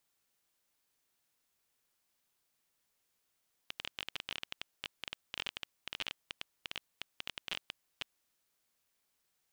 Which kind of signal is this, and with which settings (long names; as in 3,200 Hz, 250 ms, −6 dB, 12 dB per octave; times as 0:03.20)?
Geiger counter clicks 15 per second −20.5 dBFS 4.38 s